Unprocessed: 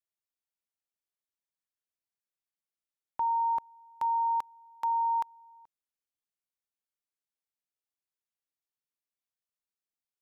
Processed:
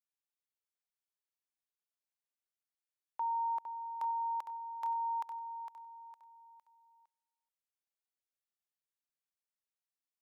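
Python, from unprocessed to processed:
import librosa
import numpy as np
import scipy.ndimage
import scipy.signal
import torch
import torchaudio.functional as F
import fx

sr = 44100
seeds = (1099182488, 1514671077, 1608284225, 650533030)

p1 = scipy.signal.sosfilt(scipy.signal.butter(2, 470.0, 'highpass', fs=sr, output='sos'), x)
p2 = p1 + fx.echo_feedback(p1, sr, ms=458, feedback_pct=38, wet_db=-8.0, dry=0)
y = p2 * librosa.db_to_amplitude(-6.0)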